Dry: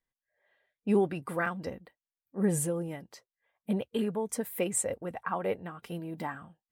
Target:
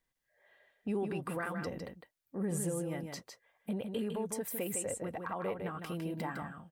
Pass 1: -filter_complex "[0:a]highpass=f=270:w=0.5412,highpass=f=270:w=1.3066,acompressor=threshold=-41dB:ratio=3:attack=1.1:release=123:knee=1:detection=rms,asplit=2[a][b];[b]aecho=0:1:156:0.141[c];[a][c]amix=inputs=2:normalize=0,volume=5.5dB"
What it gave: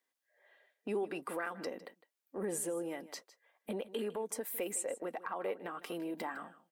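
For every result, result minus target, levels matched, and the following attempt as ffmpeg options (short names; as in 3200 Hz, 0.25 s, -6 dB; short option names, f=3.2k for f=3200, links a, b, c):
echo-to-direct -11 dB; 250 Hz band -3.5 dB
-filter_complex "[0:a]highpass=f=270:w=0.5412,highpass=f=270:w=1.3066,acompressor=threshold=-41dB:ratio=3:attack=1.1:release=123:knee=1:detection=rms,asplit=2[a][b];[b]aecho=0:1:156:0.501[c];[a][c]amix=inputs=2:normalize=0,volume=5.5dB"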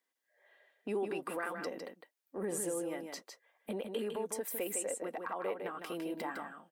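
250 Hz band -3.5 dB
-filter_complex "[0:a]acompressor=threshold=-41dB:ratio=3:attack=1.1:release=123:knee=1:detection=rms,asplit=2[a][b];[b]aecho=0:1:156:0.501[c];[a][c]amix=inputs=2:normalize=0,volume=5.5dB"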